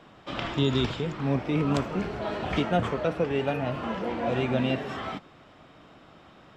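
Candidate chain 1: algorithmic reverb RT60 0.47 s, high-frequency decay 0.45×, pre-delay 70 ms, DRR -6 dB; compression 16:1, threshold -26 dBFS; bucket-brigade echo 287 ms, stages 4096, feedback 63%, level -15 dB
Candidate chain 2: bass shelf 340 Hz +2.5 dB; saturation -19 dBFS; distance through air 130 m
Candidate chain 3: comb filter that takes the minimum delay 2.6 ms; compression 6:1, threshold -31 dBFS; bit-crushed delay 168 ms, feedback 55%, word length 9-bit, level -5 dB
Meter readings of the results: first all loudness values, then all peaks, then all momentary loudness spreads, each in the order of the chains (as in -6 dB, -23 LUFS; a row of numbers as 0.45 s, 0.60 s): -30.5 LUFS, -29.5 LUFS, -34.5 LUFS; -13.5 dBFS, -19.0 dBFS, -16.0 dBFS; 13 LU, 7 LU, 18 LU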